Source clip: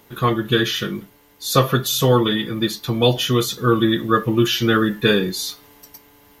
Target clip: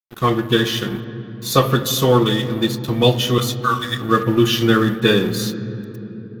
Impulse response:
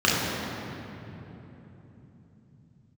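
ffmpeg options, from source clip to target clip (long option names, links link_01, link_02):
-filter_complex "[0:a]asettb=1/sr,asplit=3[link_01][link_02][link_03];[link_01]atrim=end=3.384[link_04];[link_02]atrim=start=3.38:end=4.01,asetpts=PTS-STARTPTS,afade=type=in:duration=0.004:curve=qsin,afade=type=out:start_time=0.626:duration=0.004:curve=qsin,highpass=frequency=1100:width_type=q:width=1.5[link_05];[link_03]atrim=start=4.006[link_06];[link_04][link_05]acrossfade=duration=0.004:curve1=hsin:curve2=qsin[link_07];[link_07][link_06]acrossfade=duration=0.004:curve1=qsin:curve2=hsin,aeval=exprs='sgn(val(0))*max(abs(val(0))-0.02,0)':channel_layout=same,asplit=2[link_08][link_09];[1:a]atrim=start_sample=2205,lowpass=5100[link_10];[link_09][link_10]afir=irnorm=-1:irlink=0,volume=-30dB[link_11];[link_08][link_11]amix=inputs=2:normalize=0,volume=1.5dB"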